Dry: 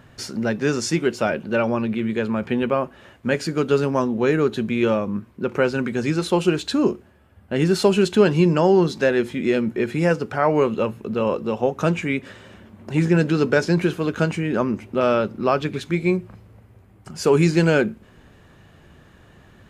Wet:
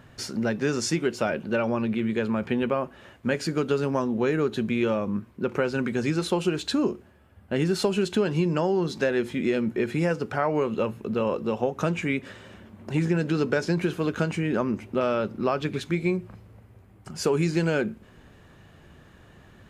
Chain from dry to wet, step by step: compression 5:1, threshold -18 dBFS, peak gain reduction 8 dB; trim -2 dB

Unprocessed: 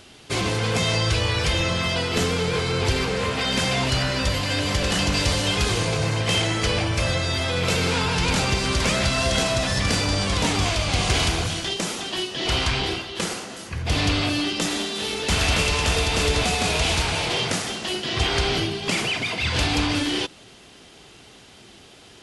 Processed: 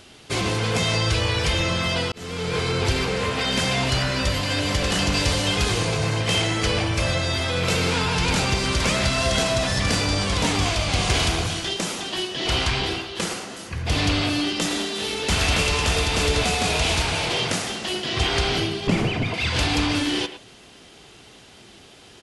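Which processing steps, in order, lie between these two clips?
18.87–19.34 s: tilt EQ -3.5 dB/octave; speakerphone echo 110 ms, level -11 dB; 2.12–2.60 s: fade in

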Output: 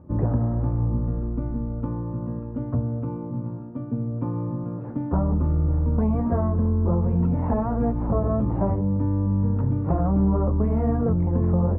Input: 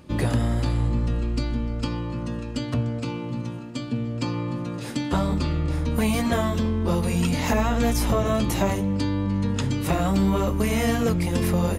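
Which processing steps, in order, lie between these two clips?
low-pass 1.1 kHz 24 dB/octave; peaking EQ 87 Hz +7 dB 1.6 oct; hum notches 60/120 Hz; trim -2 dB

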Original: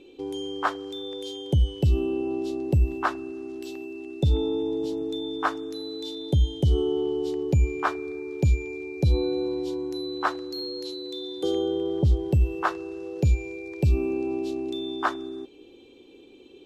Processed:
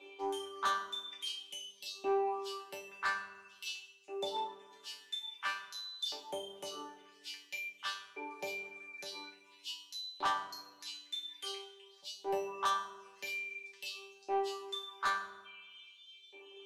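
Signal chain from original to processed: LFO high-pass saw up 0.49 Hz 750–4200 Hz; reverb removal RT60 1.1 s; in parallel at +2 dB: compression, threshold -34 dBFS, peak gain reduction 18.5 dB; on the sum: reverb removal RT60 0.52 s; chord resonator G3 fifth, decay 0.32 s; saturation -37 dBFS, distortion -6 dB; 0.50–2.09 s: small resonant body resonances 240/3200 Hz, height 8 dB; on a send at -4.5 dB: reverberation RT60 1.2 s, pre-delay 4 ms; on the sum: trim +8.5 dB

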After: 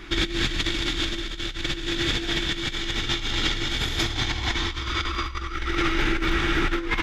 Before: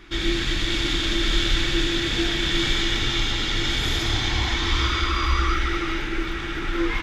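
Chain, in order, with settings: compressor with a negative ratio -26 dBFS, ratio -0.5; trim +1.5 dB

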